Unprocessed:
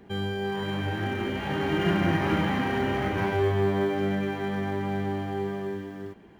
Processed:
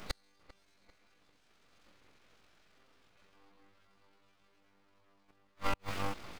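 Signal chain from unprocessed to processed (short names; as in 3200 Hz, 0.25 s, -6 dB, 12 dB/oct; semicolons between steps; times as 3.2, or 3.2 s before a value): high shelf 2000 Hz +8.5 dB; comb 1.9 ms, depth 46%; dynamic EQ 790 Hz, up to +6 dB, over -43 dBFS, Q 1.7; in parallel at -1 dB: compressor 10:1, threshold -34 dBFS, peak gain reduction 16 dB; on the sum: AM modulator 45 Hz, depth 15%; flange 0.32 Hz, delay 6.8 ms, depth 4.6 ms, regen -65%; flipped gate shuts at -24 dBFS, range -42 dB; on a send: dark delay 0.395 s, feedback 36%, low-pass 2000 Hz, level -18.5 dB; on the sum: full-wave rectifier; formant shift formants +5 st; gain +4 dB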